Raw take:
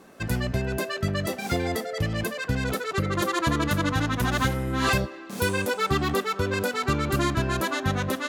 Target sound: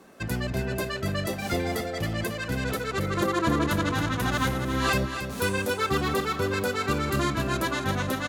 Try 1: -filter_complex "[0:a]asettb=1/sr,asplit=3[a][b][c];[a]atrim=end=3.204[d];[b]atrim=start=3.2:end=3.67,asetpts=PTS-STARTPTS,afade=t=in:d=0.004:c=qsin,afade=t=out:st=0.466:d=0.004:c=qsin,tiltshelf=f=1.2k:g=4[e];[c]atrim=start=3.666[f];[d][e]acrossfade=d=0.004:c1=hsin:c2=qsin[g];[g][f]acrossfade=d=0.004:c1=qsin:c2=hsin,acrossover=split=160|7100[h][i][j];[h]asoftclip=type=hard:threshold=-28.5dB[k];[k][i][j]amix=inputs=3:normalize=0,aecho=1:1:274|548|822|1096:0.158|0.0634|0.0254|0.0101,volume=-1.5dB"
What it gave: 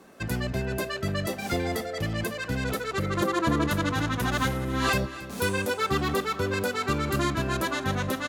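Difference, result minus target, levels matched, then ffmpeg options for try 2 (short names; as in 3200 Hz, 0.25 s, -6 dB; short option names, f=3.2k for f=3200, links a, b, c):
echo-to-direct -6.5 dB
-filter_complex "[0:a]asettb=1/sr,asplit=3[a][b][c];[a]atrim=end=3.204[d];[b]atrim=start=3.2:end=3.67,asetpts=PTS-STARTPTS,afade=t=in:d=0.004:c=qsin,afade=t=out:st=0.466:d=0.004:c=qsin,tiltshelf=f=1.2k:g=4[e];[c]atrim=start=3.666[f];[d][e]acrossfade=d=0.004:c1=hsin:c2=qsin[g];[g][f]acrossfade=d=0.004:c1=qsin:c2=hsin,acrossover=split=160|7100[h][i][j];[h]asoftclip=type=hard:threshold=-28.5dB[k];[k][i][j]amix=inputs=3:normalize=0,aecho=1:1:274|548|822|1096:0.376|0.15|0.0601|0.0241,volume=-1.5dB"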